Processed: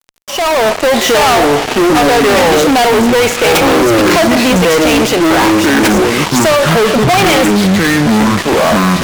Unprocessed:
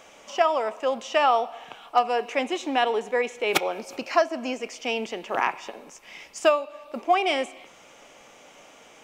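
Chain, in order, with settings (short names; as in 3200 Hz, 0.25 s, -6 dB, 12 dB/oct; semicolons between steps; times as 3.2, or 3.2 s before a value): echoes that change speed 0.52 s, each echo -7 st, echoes 2; fuzz box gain 41 dB, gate -41 dBFS; AGC gain up to 9 dB; gain -2 dB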